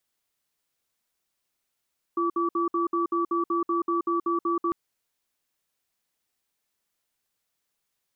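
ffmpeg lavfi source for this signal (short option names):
-f lavfi -i "aevalsrc='0.0562*(sin(2*PI*341*t)+sin(2*PI*1150*t))*clip(min(mod(t,0.19),0.13-mod(t,0.19))/0.005,0,1)':d=2.55:s=44100"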